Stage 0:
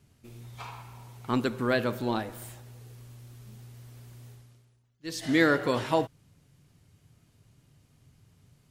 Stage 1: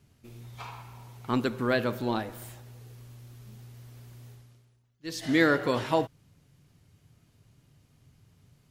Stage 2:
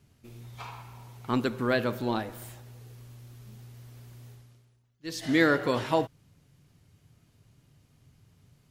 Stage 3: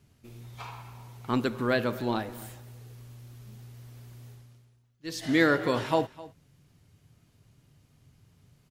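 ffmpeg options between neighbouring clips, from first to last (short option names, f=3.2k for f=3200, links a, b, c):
-af "equalizer=f=8.6k:t=o:w=0.51:g=-3"
-af anull
-af "aecho=1:1:258:0.106"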